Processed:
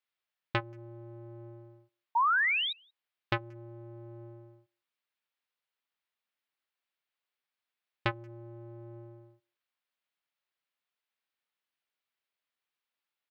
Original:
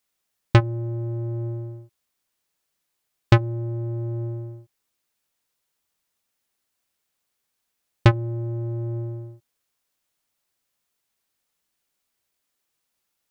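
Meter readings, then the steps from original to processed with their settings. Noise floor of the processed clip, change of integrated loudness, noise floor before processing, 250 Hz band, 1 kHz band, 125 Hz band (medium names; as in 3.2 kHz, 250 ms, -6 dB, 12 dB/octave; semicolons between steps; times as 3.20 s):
under -85 dBFS, -5.5 dB, -78 dBFS, -15.5 dB, +0.5 dB, -21.0 dB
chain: tilt EQ +4.5 dB/octave; painted sound rise, 2.15–2.73 s, 890–3900 Hz -16 dBFS; distance through air 410 m; speakerphone echo 180 ms, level -28 dB; trim -7 dB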